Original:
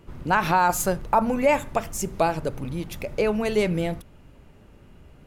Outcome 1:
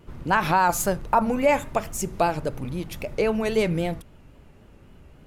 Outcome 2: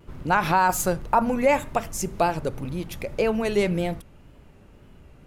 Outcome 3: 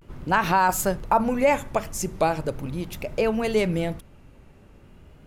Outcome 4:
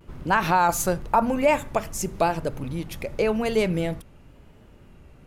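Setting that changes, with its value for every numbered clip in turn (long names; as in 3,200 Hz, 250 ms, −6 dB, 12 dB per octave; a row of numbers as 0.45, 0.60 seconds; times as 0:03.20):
pitch vibrato, speed: 3.7, 1.9, 0.4, 0.93 Hertz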